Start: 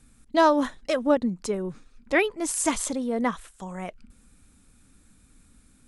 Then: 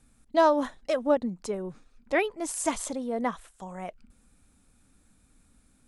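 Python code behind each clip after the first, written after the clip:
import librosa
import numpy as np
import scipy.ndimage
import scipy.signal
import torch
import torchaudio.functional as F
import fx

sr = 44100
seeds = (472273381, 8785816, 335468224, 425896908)

y = fx.peak_eq(x, sr, hz=700.0, db=5.5, octaves=0.98)
y = F.gain(torch.from_numpy(y), -5.5).numpy()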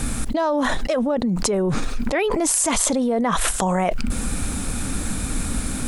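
y = fx.env_flatten(x, sr, amount_pct=100)
y = F.gain(torch.from_numpy(y), -2.5).numpy()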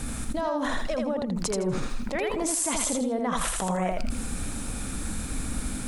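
y = fx.echo_feedback(x, sr, ms=81, feedback_pct=23, wet_db=-3.5)
y = F.gain(torch.from_numpy(y), -8.5).numpy()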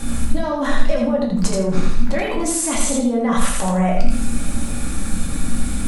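y = fx.room_shoebox(x, sr, seeds[0], volume_m3=310.0, walls='furnished', distance_m=2.3)
y = F.gain(torch.from_numpy(y), 2.5).numpy()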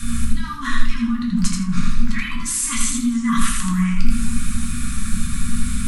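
y = scipy.signal.sosfilt(scipy.signal.cheby1(4, 1.0, [240.0, 1100.0], 'bandstop', fs=sr, output='sos'), x)
y = fx.echo_warbled(y, sr, ms=321, feedback_pct=52, rate_hz=2.8, cents=188, wet_db=-19.5)
y = F.gain(torch.from_numpy(y), 1.0).numpy()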